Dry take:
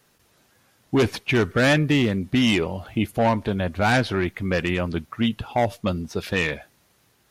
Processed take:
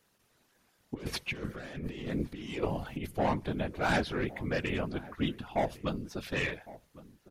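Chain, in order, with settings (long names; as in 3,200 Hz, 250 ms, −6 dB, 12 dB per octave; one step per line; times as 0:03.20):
0:00.94–0:03.07: compressor whose output falls as the input rises −25 dBFS, ratio −0.5
mains-hum notches 50/100 Hz
random phases in short frames
slap from a distant wall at 190 metres, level −18 dB
level −9 dB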